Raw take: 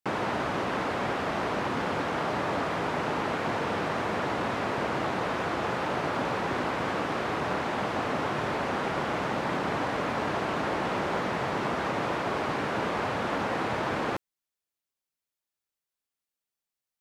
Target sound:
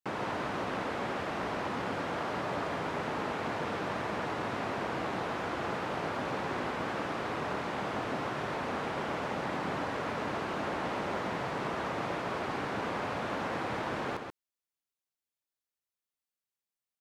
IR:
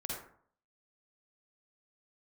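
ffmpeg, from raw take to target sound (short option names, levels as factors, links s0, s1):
-af "aecho=1:1:134:0.501,volume=0.501"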